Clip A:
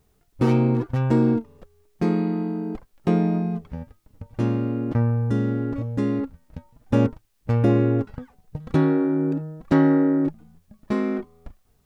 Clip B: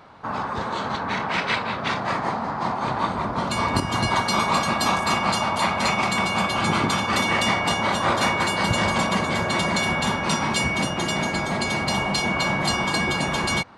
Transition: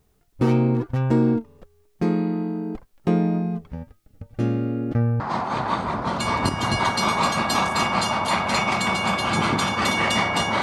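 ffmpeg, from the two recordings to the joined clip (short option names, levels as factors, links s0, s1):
-filter_complex "[0:a]asettb=1/sr,asplit=3[s0][s1][s2];[s0]atrim=end=3.914[s3];[s1]atrim=start=3.91:end=5.2,asetpts=PTS-STARTPTS,afade=t=in:d=0.004:c=qsin,afade=t=out:st=1.286:d=0.004:c=qsin,asuperstop=centerf=990:order=4:qfactor=4.1[s4];[s2]atrim=start=5.196[s5];[s3][s4]acrossfade=d=0.004:c1=hsin:c2=qsin[s6];[s6][s5]acrossfade=d=0.004:c1=qsin:c2=hsin,apad=whole_dur=10.62,atrim=end=10.62,atrim=end=5.202[s7];[1:a]atrim=start=2.508:end=7.93[s8];[s7][s8]acrossfade=d=0.004:c1=hsin:c2=hsin"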